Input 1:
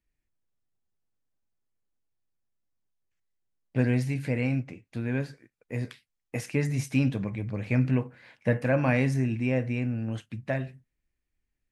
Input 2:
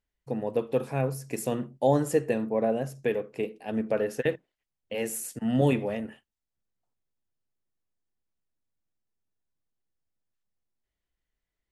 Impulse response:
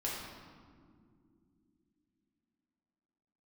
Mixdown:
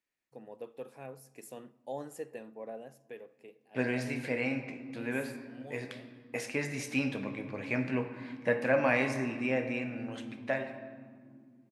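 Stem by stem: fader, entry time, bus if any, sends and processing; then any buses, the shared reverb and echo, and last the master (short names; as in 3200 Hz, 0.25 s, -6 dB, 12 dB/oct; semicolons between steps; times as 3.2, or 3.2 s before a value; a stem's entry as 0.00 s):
-1.5 dB, 0.00 s, send -6.5 dB, low shelf 180 Hz -11 dB
-15.0 dB, 0.05 s, send -23 dB, high shelf 9800 Hz +9.5 dB; auto duck -7 dB, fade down 1.00 s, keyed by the first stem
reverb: on, pre-delay 4 ms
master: HPF 370 Hz 6 dB/oct; high shelf 7800 Hz -6.5 dB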